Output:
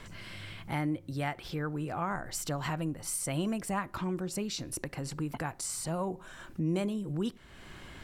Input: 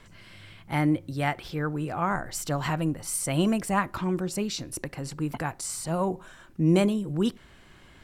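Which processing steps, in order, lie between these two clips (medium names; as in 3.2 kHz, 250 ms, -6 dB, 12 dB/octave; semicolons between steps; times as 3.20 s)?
compression 2:1, threshold -45 dBFS, peak gain reduction 15.5 dB; trim +5 dB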